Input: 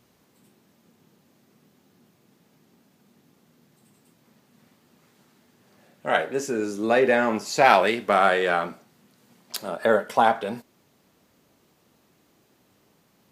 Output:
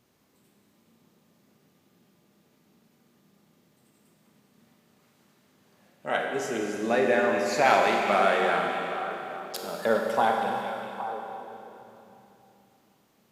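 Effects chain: repeats whose band climbs or falls 407 ms, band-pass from 2.6 kHz, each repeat -1.4 oct, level -7 dB; Schroeder reverb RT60 3 s, combs from 31 ms, DRR 1.5 dB; trim -5.5 dB

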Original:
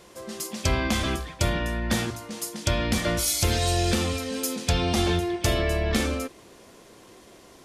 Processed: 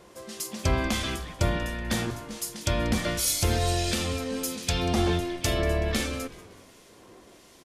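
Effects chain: harmonic tremolo 1.4 Hz, depth 50%, crossover 1.8 kHz; frequency-shifting echo 188 ms, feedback 45%, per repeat -84 Hz, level -17.5 dB

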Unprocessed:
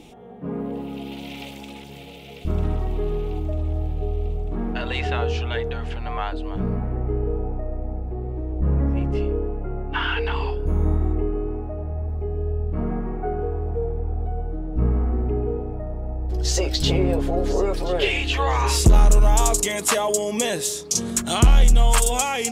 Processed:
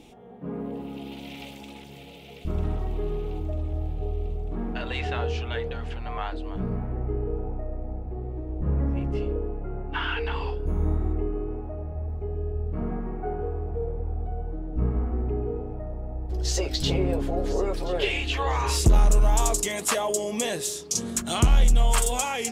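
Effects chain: flange 1.7 Hz, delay 1.1 ms, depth 9.8 ms, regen -79%

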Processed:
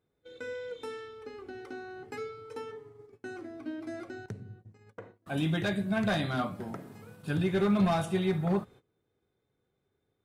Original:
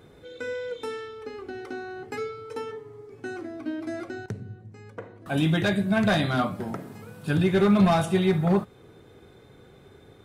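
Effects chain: gate -44 dBFS, range -21 dB; trim -6.5 dB

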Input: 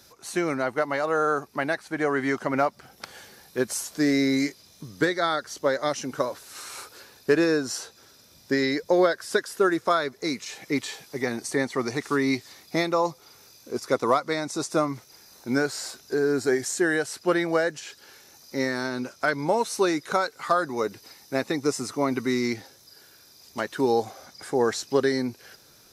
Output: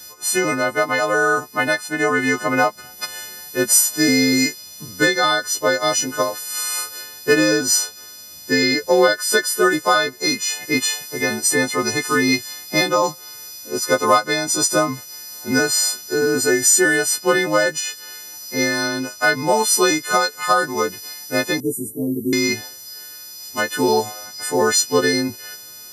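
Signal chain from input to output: partials quantised in pitch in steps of 3 st; 21.60–22.33 s: inverse Chebyshev band-stop 1.3–3.9 kHz, stop band 70 dB; trim +5.5 dB

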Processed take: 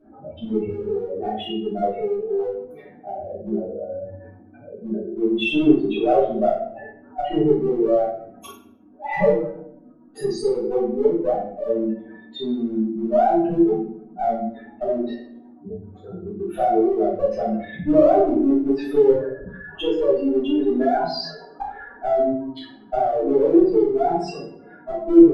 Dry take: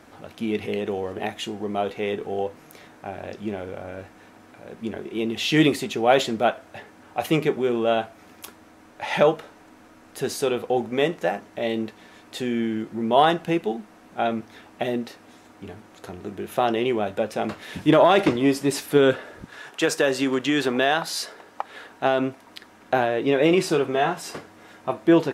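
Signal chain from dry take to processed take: spectral contrast enhancement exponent 3.7; low-pass that closes with the level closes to 750 Hz, closed at -17.5 dBFS; in parallel at -9 dB: one-sided clip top -27.5 dBFS; on the sum: simulated room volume 120 m³, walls mixed, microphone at 3.5 m; trim -11.5 dB

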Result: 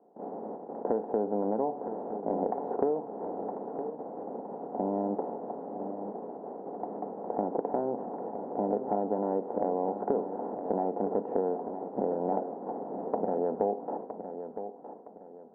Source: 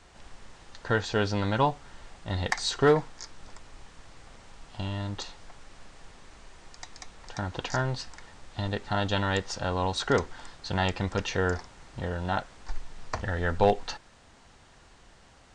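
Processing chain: spectral levelling over time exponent 0.6; gate -35 dBFS, range -22 dB; elliptic band-pass 210–770 Hz, stop band 70 dB; compression 6:1, threshold -30 dBFS, peak gain reduction 13.5 dB; feedback delay 964 ms, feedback 33%, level -10 dB; trim +4.5 dB

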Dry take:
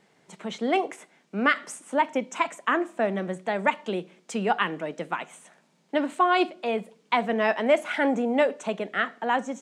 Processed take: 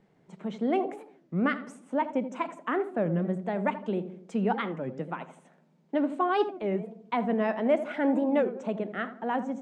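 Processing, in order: tilt EQ -3.5 dB/octave; filtered feedback delay 82 ms, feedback 52%, low-pass 970 Hz, level -10 dB; warped record 33 1/3 rpm, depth 250 cents; trim -6.5 dB

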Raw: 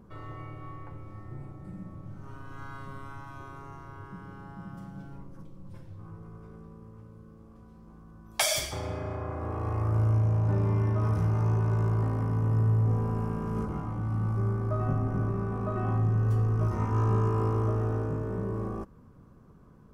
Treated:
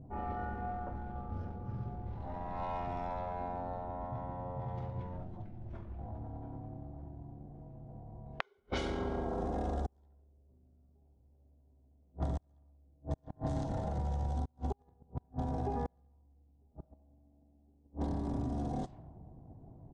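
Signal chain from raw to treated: inverted gate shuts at -20 dBFS, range -41 dB; level-controlled noise filter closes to 640 Hz, open at -32 dBFS; tilt EQ +2 dB/octave; compression, threshold -39 dBFS, peak gain reduction 9 dB; pitch shift -7.5 st; trim +7.5 dB

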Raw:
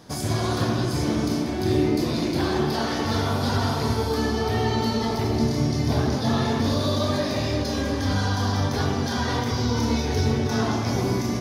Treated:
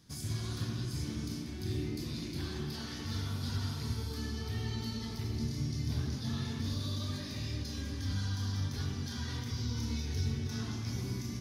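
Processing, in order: amplifier tone stack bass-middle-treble 6-0-2; trim +4 dB

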